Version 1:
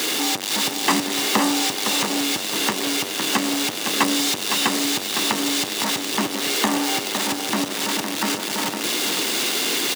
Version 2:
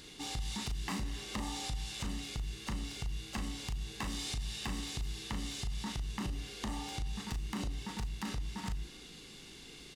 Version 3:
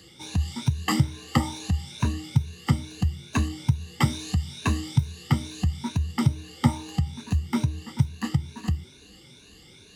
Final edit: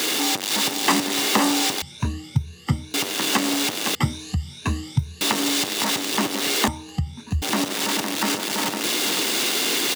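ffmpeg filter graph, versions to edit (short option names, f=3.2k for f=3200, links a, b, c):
-filter_complex "[2:a]asplit=3[a][b][c];[0:a]asplit=4[d][e][f][g];[d]atrim=end=1.822[h];[a]atrim=start=1.818:end=2.942[i];[e]atrim=start=2.938:end=3.952[j];[b]atrim=start=3.948:end=5.212[k];[f]atrim=start=5.208:end=6.682[l];[c]atrim=start=6.678:end=7.422[m];[g]atrim=start=7.418[n];[h][i]acrossfade=d=0.004:c1=hsin:c2=hsin[o];[o][j]acrossfade=d=0.004:c1=hsin:c2=hsin[p];[p][k]acrossfade=d=0.004:c1=hsin:c2=hsin[q];[q][l]acrossfade=d=0.004:c1=hsin:c2=hsin[r];[r][m]acrossfade=d=0.004:c1=hsin:c2=hsin[s];[s][n]acrossfade=d=0.004:c1=hsin:c2=hsin"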